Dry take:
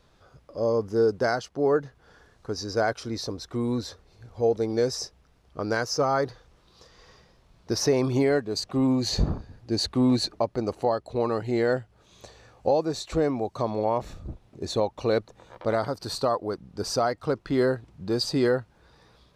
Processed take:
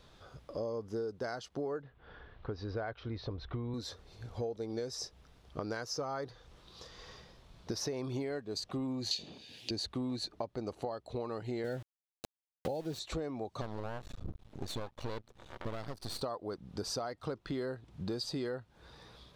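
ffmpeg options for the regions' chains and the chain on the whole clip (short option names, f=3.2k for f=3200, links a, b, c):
-filter_complex "[0:a]asettb=1/sr,asplit=3[a][b][c];[a]atrim=end=1.824[d];[b]atrim=start=1.82:end=3.74,asetpts=PTS-STARTPTS,afade=t=in:d=0.004:c=qsin,afade=t=out:st=1.916:d=0.004:c=qsin,lowpass=f=3.2k:w=0.5412,lowpass=f=3.2k:w=1.3066,asubboost=boost=7.5:cutoff=110[e];[c]atrim=start=3.736[f];[d][e]acrossfade=d=0.004:c1=hsin:c2=qsin[g];[g][f]acrossfade=d=0.004:c1=qsin:c2=hsin,asettb=1/sr,asplit=3[h][i][j];[h]atrim=end=9.114[k];[i]atrim=start=9.11:end=9.71,asetpts=PTS-STARTPTS,afade=t=in:d=0.004:c=qsin,afade=t=out:st=0.596:d=0.004:c=qsin,highpass=250,highshelf=f=1.9k:t=q:w=3:g=13.5[l];[j]atrim=start=9.706[m];[k][l]acrossfade=d=0.004:c1=hsin:c2=qsin[n];[n][m]acrossfade=d=0.004:c1=qsin:c2=hsin,asettb=1/sr,asplit=3[o][p][q];[o]atrim=end=11.644[r];[p]atrim=start=11.64:end=12.99,asetpts=PTS-STARTPTS,afade=t=in:d=0.004:c=qsin,afade=t=out:st=1.346:d=0.004:c=qsin,asuperstop=centerf=1100:order=20:qfactor=3.4,equalizer=f=130:t=o:w=2.2:g=7.5,aeval=exprs='val(0)*gte(abs(val(0)),0.0178)':c=same[s];[q]atrim=start=12.986[t];[r][s]acrossfade=d=0.004:c1=hsin:c2=qsin[u];[u][t]acrossfade=d=0.004:c1=qsin:c2=hsin,asettb=1/sr,asplit=3[v][w][x];[v]atrim=end=13.614[y];[w]atrim=start=13.61:end=16.22,asetpts=PTS-STARTPTS,afade=t=in:d=0.004:c=qsin,afade=t=out:st=2.606:d=0.004:c=qsin,lowshelf=f=150:g=5.5,aeval=exprs='max(val(0),0)':c=same[z];[x]atrim=start=16.216[aa];[y][z]acrossfade=d=0.004:c1=hsin:c2=qsin[ab];[ab][aa]acrossfade=d=0.004:c1=qsin:c2=hsin,equalizer=f=3.5k:w=2.8:g=5,acompressor=threshold=-37dB:ratio=6,volume=1dB"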